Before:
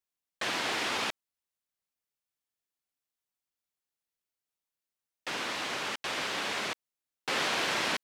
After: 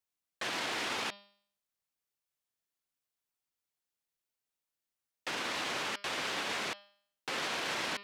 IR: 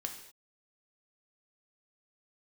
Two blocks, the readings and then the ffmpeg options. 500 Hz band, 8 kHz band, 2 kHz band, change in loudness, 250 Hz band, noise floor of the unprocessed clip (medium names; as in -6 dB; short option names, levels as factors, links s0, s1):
-3.5 dB, -3.5 dB, -3.5 dB, -3.5 dB, -3.5 dB, under -85 dBFS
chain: -af "bandreject=f=201.6:t=h:w=4,bandreject=f=403.2:t=h:w=4,bandreject=f=604.8:t=h:w=4,bandreject=f=806.4:t=h:w=4,bandreject=f=1008:t=h:w=4,bandreject=f=1209.6:t=h:w=4,bandreject=f=1411.2:t=h:w=4,bandreject=f=1612.8:t=h:w=4,bandreject=f=1814.4:t=h:w=4,bandreject=f=2016:t=h:w=4,bandreject=f=2217.6:t=h:w=4,bandreject=f=2419.2:t=h:w=4,bandreject=f=2620.8:t=h:w=4,bandreject=f=2822.4:t=h:w=4,bandreject=f=3024:t=h:w=4,bandreject=f=3225.6:t=h:w=4,bandreject=f=3427.2:t=h:w=4,bandreject=f=3628.8:t=h:w=4,bandreject=f=3830.4:t=h:w=4,bandreject=f=4032:t=h:w=4,bandreject=f=4233.6:t=h:w=4,bandreject=f=4435.2:t=h:w=4,bandreject=f=4636.8:t=h:w=4,bandreject=f=4838.4:t=h:w=4,bandreject=f=5040:t=h:w=4,bandreject=f=5241.6:t=h:w=4,bandreject=f=5443.2:t=h:w=4,alimiter=level_in=1.33:limit=0.0631:level=0:latency=1:release=30,volume=0.75"